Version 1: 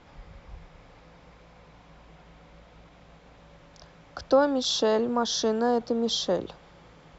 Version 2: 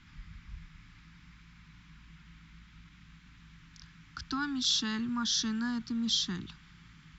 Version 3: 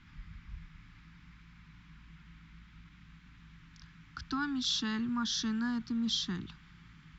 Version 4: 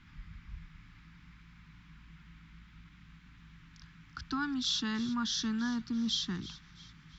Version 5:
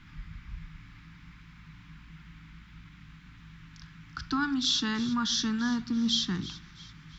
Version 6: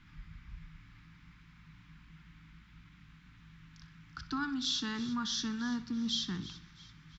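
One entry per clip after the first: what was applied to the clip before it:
Chebyshev band-stop 200–1600 Hz, order 2
treble shelf 4.8 kHz -9.5 dB
feedback echo behind a high-pass 334 ms, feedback 44%, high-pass 2.7 kHz, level -15 dB
reverberation RT60 0.50 s, pre-delay 7 ms, DRR 13 dB; trim +5 dB
feedback delay 62 ms, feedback 55%, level -18 dB; trim -6.5 dB

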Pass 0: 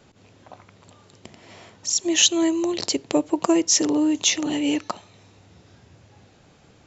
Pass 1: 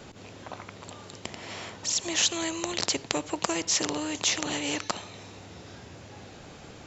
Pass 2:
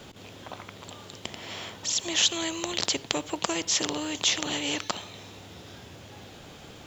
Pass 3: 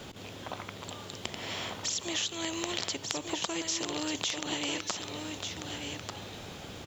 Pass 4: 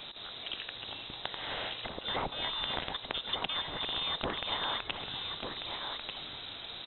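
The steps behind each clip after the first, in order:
spectrum-flattening compressor 2:1
peaking EQ 3.3 kHz +6.5 dB 0.4 oct; in parallel at -8 dB: word length cut 8-bit, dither none; on the sum: trim -3.5 dB
compression 6:1, threshold -32 dBFS, peak gain reduction 13.5 dB; on a send: delay 1192 ms -6 dB; on the sum: trim +1.5 dB
frequency inversion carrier 3.9 kHz

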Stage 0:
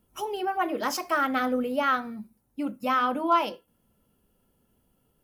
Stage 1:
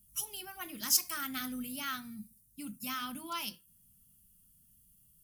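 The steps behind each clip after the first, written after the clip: FFT filter 170 Hz 0 dB, 490 Hz -29 dB, 9.1 kHz +12 dB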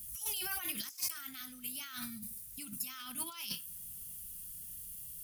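compressor with a negative ratio -49 dBFS, ratio -1; added noise white -76 dBFS; amplifier tone stack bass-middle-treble 5-5-5; trim +15.5 dB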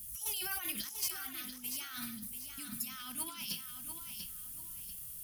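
on a send at -21 dB: reverberation RT60 0.50 s, pre-delay 37 ms; on the sum: bit-crushed delay 690 ms, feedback 35%, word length 10-bit, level -7 dB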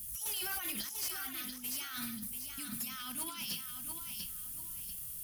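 hard clipper -36 dBFS, distortion -11 dB; trim +2.5 dB

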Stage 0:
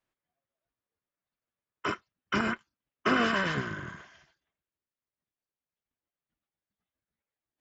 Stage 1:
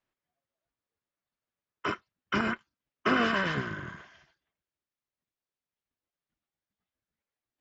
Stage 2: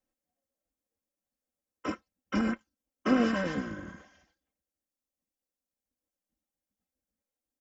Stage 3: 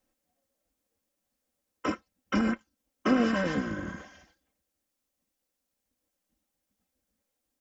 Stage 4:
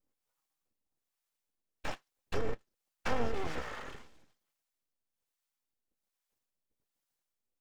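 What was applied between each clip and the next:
low-pass 5.8 kHz 12 dB/octave
high-order bell 2 kHz -9.5 dB 2.6 oct; comb 3.8 ms, depth 79%
compression 1.5:1, threshold -43 dBFS, peak gain reduction 8.5 dB; trim +8.5 dB
full-wave rectifier; harmonic tremolo 1.2 Hz, depth 70%, crossover 610 Hz; trim -1.5 dB

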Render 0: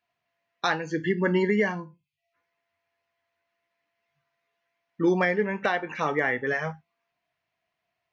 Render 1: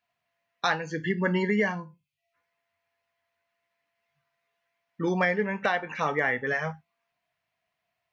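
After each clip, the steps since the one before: peaking EQ 340 Hz -7 dB 0.51 oct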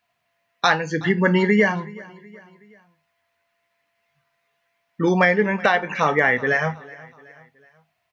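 feedback delay 373 ms, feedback 48%, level -21.5 dB; trim +8 dB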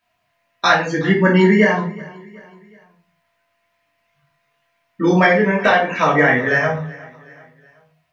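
simulated room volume 280 m³, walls furnished, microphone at 2.8 m; trim -1 dB

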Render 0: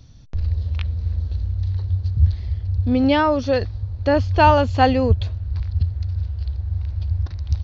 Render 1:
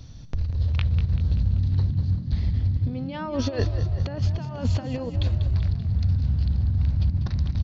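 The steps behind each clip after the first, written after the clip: compressor with a negative ratio -23 dBFS, ratio -0.5; on a send: frequency-shifting echo 193 ms, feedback 53%, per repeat +41 Hz, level -11 dB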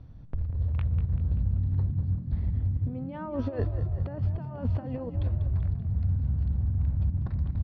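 low-pass 1.4 kHz 12 dB/octave; trim -4.5 dB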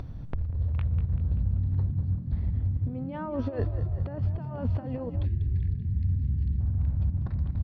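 time-frequency box 5.25–6.60 s, 450–1600 Hz -24 dB; upward compressor, threshold -28 dBFS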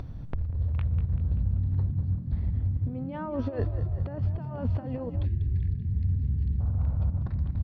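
time-frequency box 5.91–7.23 s, 410–1500 Hz +8 dB

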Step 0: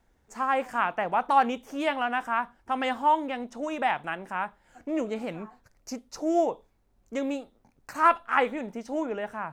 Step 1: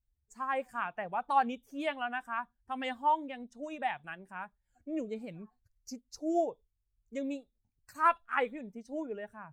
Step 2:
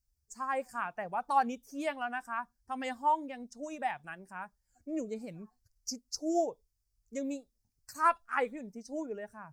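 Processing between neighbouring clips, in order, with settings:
expander on every frequency bin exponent 1.5; trim -4.5 dB
resonant high shelf 4.2 kHz +6.5 dB, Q 3

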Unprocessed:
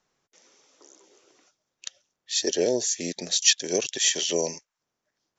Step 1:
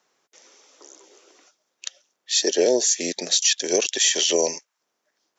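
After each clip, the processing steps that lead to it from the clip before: high-pass 300 Hz 12 dB/octave; peak limiter -15 dBFS, peak gain reduction 10 dB; trim +6.5 dB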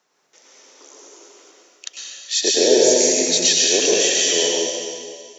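fade out at the end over 1.67 s; plate-style reverb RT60 2 s, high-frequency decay 1×, pre-delay 90 ms, DRR -4.5 dB

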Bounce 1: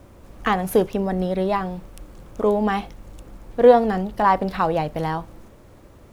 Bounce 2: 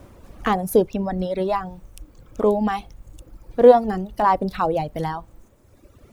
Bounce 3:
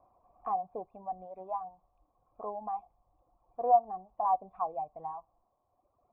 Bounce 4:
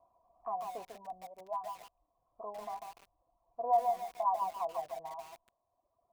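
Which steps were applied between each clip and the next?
reverb removal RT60 1.6 s; dynamic bell 2.1 kHz, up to -6 dB, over -35 dBFS, Q 0.77; trim +2 dB
cascade formant filter a; trim -3 dB
small resonant body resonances 670/980 Hz, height 14 dB, ringing for 90 ms; bit-crushed delay 145 ms, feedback 35%, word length 7-bit, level -4 dB; trim -8.5 dB

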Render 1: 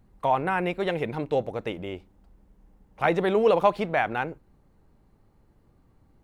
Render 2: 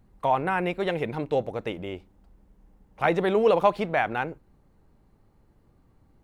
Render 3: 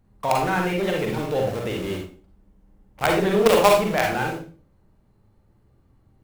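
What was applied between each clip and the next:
no audible change
in parallel at -6 dB: companded quantiser 2-bit; on the sum: reverberation RT60 0.40 s, pre-delay 37 ms, DRR 0 dB; trim -3 dB

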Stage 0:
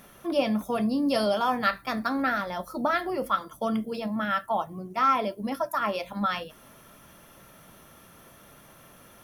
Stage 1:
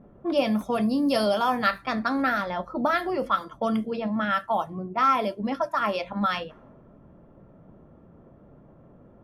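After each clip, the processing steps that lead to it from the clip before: level-controlled noise filter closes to 430 Hz, open at -22.5 dBFS; in parallel at -2 dB: compression, threshold -34 dBFS, peak gain reduction 14.5 dB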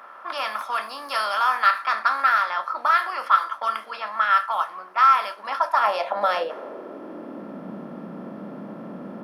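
spectral levelling over time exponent 0.6; high-pass sweep 1.2 kHz -> 190 Hz, 5.36–7.74 s; trim -2.5 dB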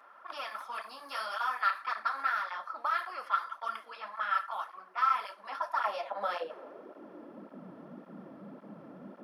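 cancelling through-zero flanger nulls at 1.8 Hz, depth 5.7 ms; trim -9 dB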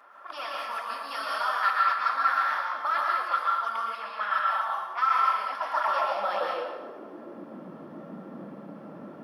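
plate-style reverb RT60 1.1 s, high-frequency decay 0.8×, pre-delay 105 ms, DRR -2 dB; trim +2.5 dB

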